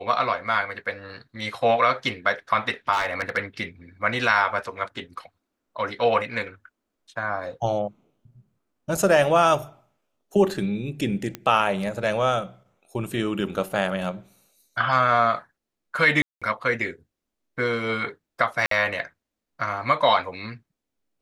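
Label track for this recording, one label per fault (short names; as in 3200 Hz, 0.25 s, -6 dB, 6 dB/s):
2.920000	3.380000	clipped -19 dBFS
11.350000	11.350000	pop -15 dBFS
16.220000	16.420000	gap 0.196 s
18.660000	18.710000	gap 53 ms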